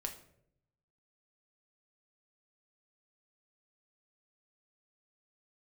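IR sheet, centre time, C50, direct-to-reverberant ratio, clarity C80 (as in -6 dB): 14 ms, 11.0 dB, 3.5 dB, 14.5 dB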